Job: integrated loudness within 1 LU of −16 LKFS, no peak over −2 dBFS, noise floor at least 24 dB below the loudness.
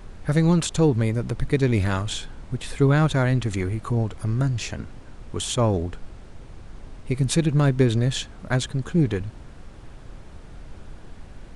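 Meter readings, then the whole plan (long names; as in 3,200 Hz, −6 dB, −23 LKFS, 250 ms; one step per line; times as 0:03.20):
background noise floor −43 dBFS; target noise floor −48 dBFS; integrated loudness −23.5 LKFS; sample peak −7.0 dBFS; target loudness −16.0 LKFS
→ noise reduction from a noise print 6 dB
level +7.5 dB
brickwall limiter −2 dBFS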